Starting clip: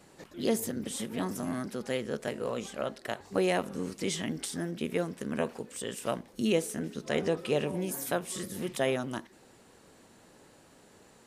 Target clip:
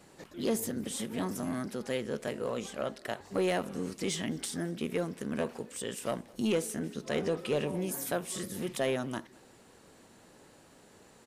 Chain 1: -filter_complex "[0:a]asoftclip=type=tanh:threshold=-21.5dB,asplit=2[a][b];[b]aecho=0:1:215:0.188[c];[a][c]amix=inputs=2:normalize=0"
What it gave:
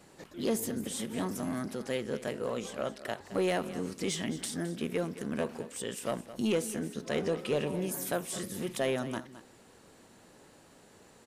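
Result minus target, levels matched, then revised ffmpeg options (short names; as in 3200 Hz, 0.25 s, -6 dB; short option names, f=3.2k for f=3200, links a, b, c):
echo-to-direct +12 dB
-filter_complex "[0:a]asoftclip=type=tanh:threshold=-21.5dB,asplit=2[a][b];[b]aecho=0:1:215:0.0473[c];[a][c]amix=inputs=2:normalize=0"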